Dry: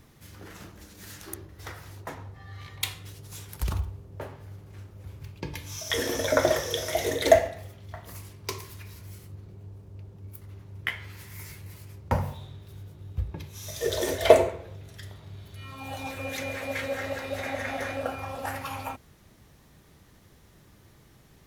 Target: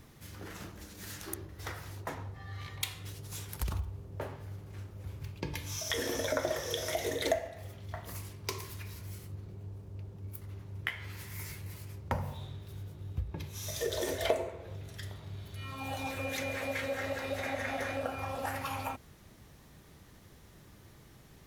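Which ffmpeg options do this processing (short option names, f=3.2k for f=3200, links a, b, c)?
-af "acompressor=threshold=-33dB:ratio=2.5"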